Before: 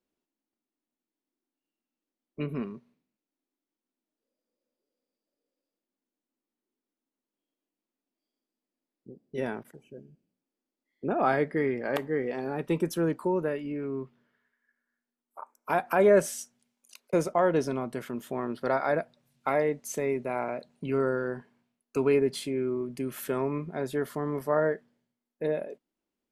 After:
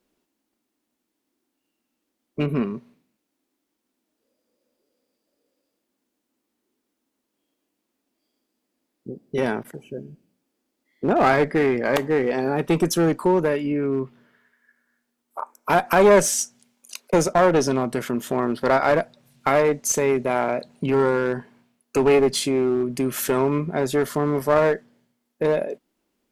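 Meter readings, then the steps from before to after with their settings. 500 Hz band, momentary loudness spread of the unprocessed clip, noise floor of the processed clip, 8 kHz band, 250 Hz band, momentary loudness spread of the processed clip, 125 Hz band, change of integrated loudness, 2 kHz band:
+7.5 dB, 13 LU, −79 dBFS, +15.0 dB, +8.0 dB, 17 LU, +8.5 dB, +8.0 dB, +8.5 dB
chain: dynamic equaliser 6,300 Hz, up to +7 dB, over −57 dBFS, Q 1.3
in parallel at −2.5 dB: downward compressor, threshold −39 dBFS, peak gain reduction 20.5 dB
on the sum: asymmetric clip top −24 dBFS
level +8 dB

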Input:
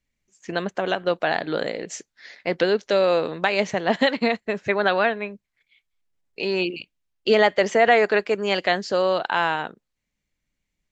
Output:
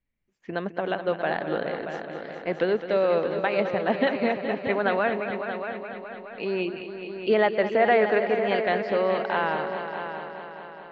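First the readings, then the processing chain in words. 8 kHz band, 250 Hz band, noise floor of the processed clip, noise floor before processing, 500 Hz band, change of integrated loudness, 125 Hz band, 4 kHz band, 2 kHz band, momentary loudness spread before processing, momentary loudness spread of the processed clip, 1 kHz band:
can't be measured, −2.0 dB, −44 dBFS, −80 dBFS, −2.0 dB, −3.5 dB, −1.5 dB, −9.5 dB, −4.5 dB, 12 LU, 14 LU, −2.5 dB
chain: high-frequency loss of the air 360 metres
on a send: echo machine with several playback heads 210 ms, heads all three, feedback 54%, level −12 dB
on the sum: level −2.5 dB

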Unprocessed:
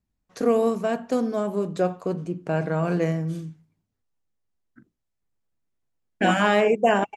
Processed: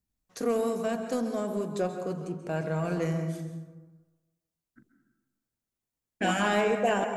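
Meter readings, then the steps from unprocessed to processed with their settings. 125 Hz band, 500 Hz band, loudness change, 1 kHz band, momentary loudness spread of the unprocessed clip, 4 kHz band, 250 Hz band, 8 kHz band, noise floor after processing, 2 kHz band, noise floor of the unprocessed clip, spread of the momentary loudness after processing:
−5.0 dB, −6.0 dB, −6.0 dB, −6.0 dB, 11 LU, −4.0 dB, −5.5 dB, can't be measured, below −85 dBFS, −5.5 dB, −79 dBFS, 12 LU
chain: high-shelf EQ 4,900 Hz +10.5 dB
dense smooth reverb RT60 1.2 s, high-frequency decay 0.4×, pre-delay 120 ms, DRR 7.5 dB
in parallel at −7 dB: soft clipping −20.5 dBFS, distortion −9 dB
on the sum: level −9 dB

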